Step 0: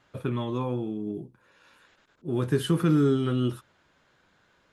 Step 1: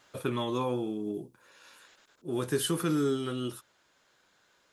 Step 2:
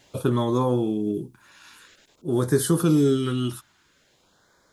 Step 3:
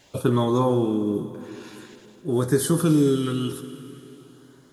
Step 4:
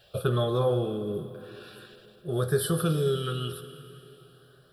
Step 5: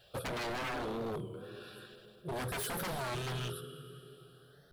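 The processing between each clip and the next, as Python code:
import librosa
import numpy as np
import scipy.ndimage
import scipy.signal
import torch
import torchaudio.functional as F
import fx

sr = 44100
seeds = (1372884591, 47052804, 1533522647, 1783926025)

y1 = fx.bass_treble(x, sr, bass_db=-9, treble_db=10)
y1 = fx.rider(y1, sr, range_db=4, speed_s=2.0)
y1 = F.gain(torch.from_numpy(y1), -2.0).numpy()
y2 = fx.low_shelf(y1, sr, hz=200.0, db=8.0)
y2 = fx.filter_lfo_notch(y2, sr, shape='sine', hz=0.49, low_hz=470.0, high_hz=2800.0, q=1.2)
y2 = F.gain(torch.from_numpy(y2), 6.5).numpy()
y3 = fx.rider(y2, sr, range_db=10, speed_s=2.0)
y3 = fx.rev_plate(y3, sr, seeds[0], rt60_s=3.3, hf_ratio=1.0, predelay_ms=0, drr_db=10.0)
y4 = fx.fixed_phaser(y3, sr, hz=1400.0, stages=8)
y5 = 10.0 ** (-29.0 / 20.0) * (np.abs((y4 / 10.0 ** (-29.0 / 20.0) + 3.0) % 4.0 - 2.0) - 1.0)
y5 = fx.record_warp(y5, sr, rpm=33.33, depth_cents=160.0)
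y5 = F.gain(torch.from_numpy(y5), -3.5).numpy()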